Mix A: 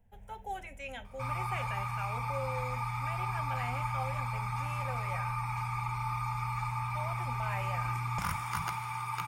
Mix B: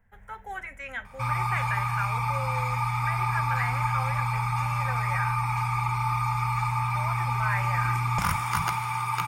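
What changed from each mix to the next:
speech: add flat-topped bell 1,500 Hz +14 dB 1.2 octaves
background +8.0 dB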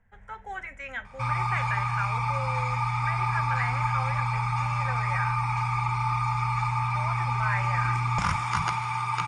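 master: add low-pass filter 7,700 Hz 24 dB per octave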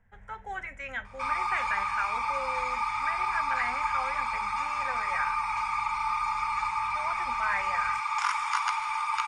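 background: add Butterworth high-pass 830 Hz 48 dB per octave

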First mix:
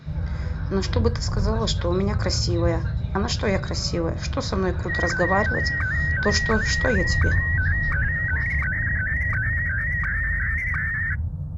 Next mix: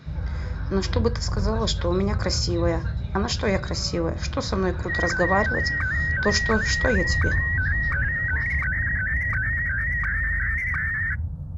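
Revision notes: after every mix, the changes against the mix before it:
first sound: send −11.5 dB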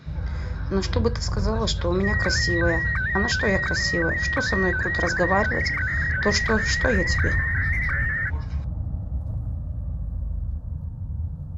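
second sound: entry −2.85 s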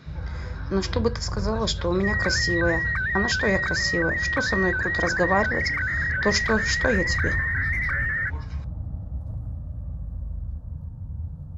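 first sound −3.5 dB

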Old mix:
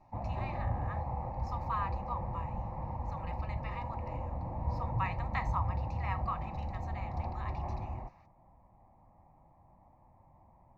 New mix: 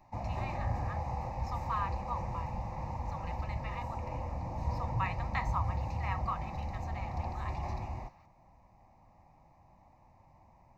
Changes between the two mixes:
background: remove low-pass filter 1,400 Hz 12 dB per octave
master: add high-shelf EQ 4,800 Hz +7.5 dB

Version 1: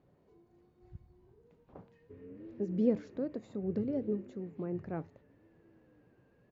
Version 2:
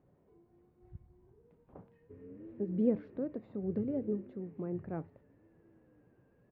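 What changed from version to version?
master: add high-frequency loss of the air 440 metres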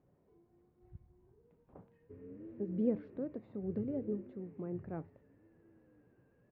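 speech −3.0 dB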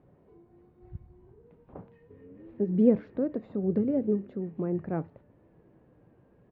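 speech +11.0 dB

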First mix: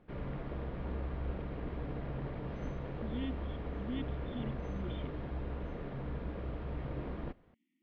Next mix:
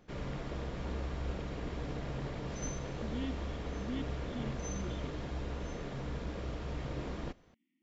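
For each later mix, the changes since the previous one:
background: remove high-frequency loss of the air 430 metres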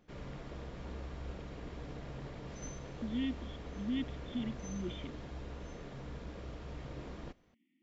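speech +4.5 dB
background −6.0 dB

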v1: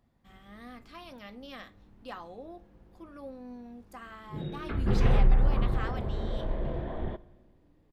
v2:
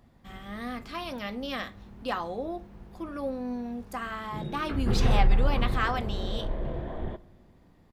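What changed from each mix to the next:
speech +11.0 dB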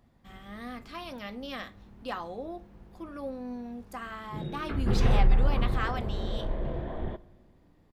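speech −4.5 dB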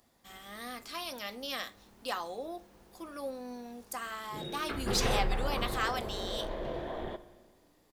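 background: send +7.0 dB
master: add bass and treble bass −13 dB, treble +14 dB

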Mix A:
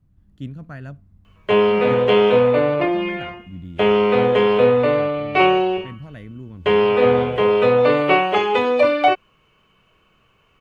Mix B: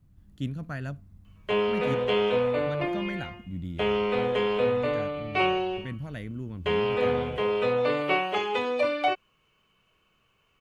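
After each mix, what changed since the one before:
background −10.5 dB
master: add high-shelf EQ 3,300 Hz +8 dB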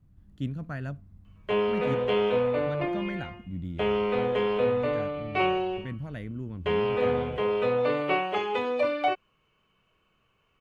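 master: add high-shelf EQ 3,300 Hz −8 dB

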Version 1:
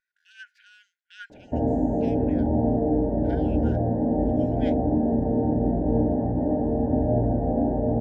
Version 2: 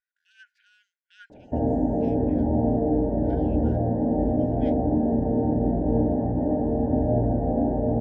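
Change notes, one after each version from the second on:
speech −7.5 dB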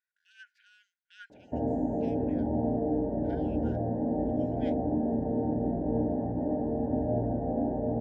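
background −5.5 dB
master: add high-pass filter 100 Hz 6 dB per octave

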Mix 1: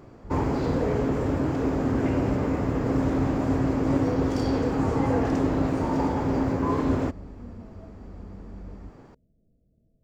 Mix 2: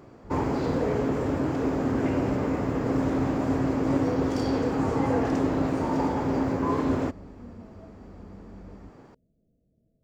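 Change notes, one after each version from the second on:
master: add low-shelf EQ 82 Hz −9.5 dB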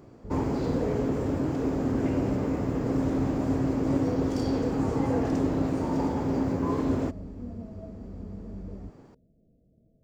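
speech +6.0 dB
background: add parametric band 1,500 Hz −6 dB 2.8 octaves

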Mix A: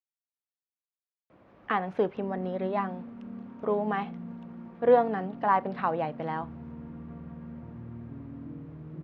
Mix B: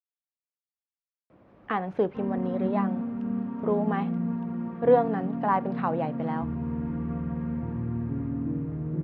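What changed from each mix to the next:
speech: add tilt shelving filter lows +3 dB, about 670 Hz
background +11.5 dB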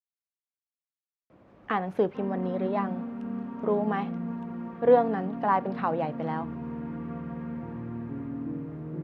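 background: add high-pass filter 300 Hz 6 dB per octave
master: remove high-frequency loss of the air 98 metres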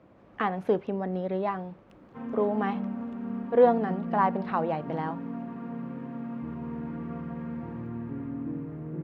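speech: entry −1.30 s

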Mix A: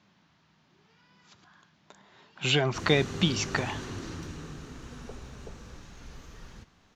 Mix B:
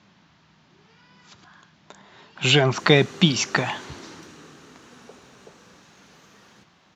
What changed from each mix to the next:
speech +7.5 dB
background: add Bessel high-pass filter 310 Hz, order 2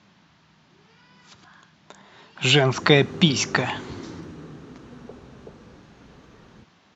background: add spectral tilt −4 dB per octave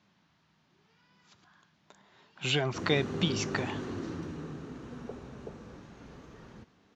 speech −11.5 dB

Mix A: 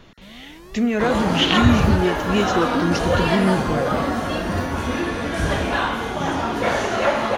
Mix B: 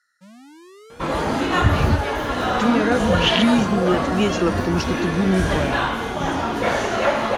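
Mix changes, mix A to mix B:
speech: entry +1.85 s
first sound: add Chebyshev band-pass filter 140–8,900 Hz, order 2

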